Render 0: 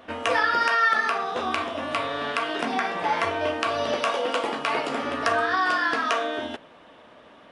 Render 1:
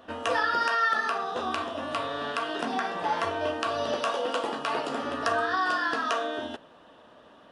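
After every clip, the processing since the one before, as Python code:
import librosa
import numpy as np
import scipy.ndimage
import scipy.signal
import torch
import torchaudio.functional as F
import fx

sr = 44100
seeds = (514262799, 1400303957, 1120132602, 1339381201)

y = fx.peak_eq(x, sr, hz=2200.0, db=-12.5, octaves=0.24)
y = y * librosa.db_to_amplitude(-3.0)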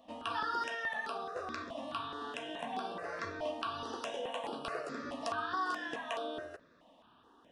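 y = fx.phaser_held(x, sr, hz=4.7, low_hz=400.0, high_hz=6700.0)
y = y * librosa.db_to_amplitude(-6.5)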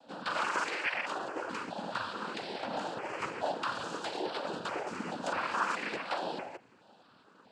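y = fx.noise_vocoder(x, sr, seeds[0], bands=8)
y = y * librosa.db_to_amplitude(3.5)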